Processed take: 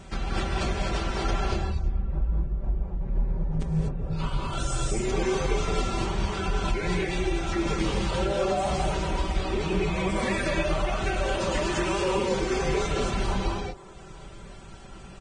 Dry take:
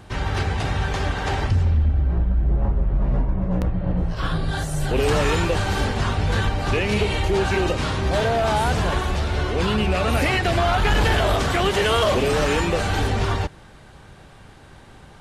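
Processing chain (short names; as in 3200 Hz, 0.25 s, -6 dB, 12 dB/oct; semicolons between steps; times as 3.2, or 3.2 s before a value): reverb removal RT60 0.86 s; bell 1200 Hz -4.5 dB 2.6 oct; comb 4.5 ms, depth 69%; dynamic EQ 840 Hz, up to +3 dB, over -41 dBFS, Q 4.3; compressor 16:1, threshold -26 dBFS, peak gain reduction 12 dB; on a send: band-limited delay 0.289 s, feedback 59%, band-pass 780 Hz, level -18 dB; on the sum: pitch shift -2.5 st; non-linear reverb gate 0.27 s rising, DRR -1.5 dB; Vorbis 16 kbps 22050 Hz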